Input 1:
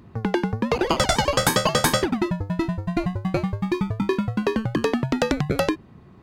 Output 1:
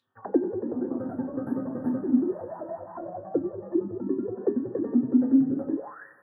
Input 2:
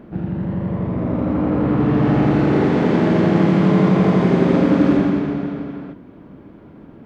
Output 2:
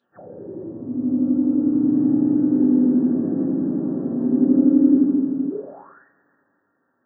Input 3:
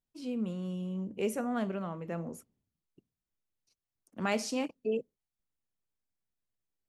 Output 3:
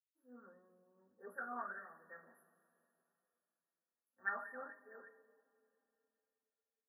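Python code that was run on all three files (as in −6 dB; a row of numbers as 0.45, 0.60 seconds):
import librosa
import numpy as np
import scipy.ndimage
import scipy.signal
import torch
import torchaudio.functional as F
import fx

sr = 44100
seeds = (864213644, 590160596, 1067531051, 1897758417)

y = fx.brickwall_bandstop(x, sr, low_hz=1900.0, high_hz=10000.0)
y = fx.high_shelf(y, sr, hz=6100.0, db=11.0)
y = (np.kron(scipy.signal.resample_poly(y, 1, 2), np.eye(2)[0]) * 2)[:len(y)]
y = fx.rev_double_slope(y, sr, seeds[0], early_s=0.23, late_s=3.6, knee_db=-19, drr_db=-7.0)
y = fx.auto_wah(y, sr, base_hz=270.0, top_hz=3800.0, q=10.0, full_db=-8.0, direction='down')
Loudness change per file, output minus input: −4.5, −2.0, −11.0 LU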